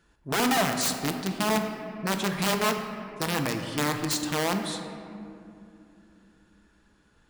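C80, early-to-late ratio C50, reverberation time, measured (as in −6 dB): 7.0 dB, 6.0 dB, 2.7 s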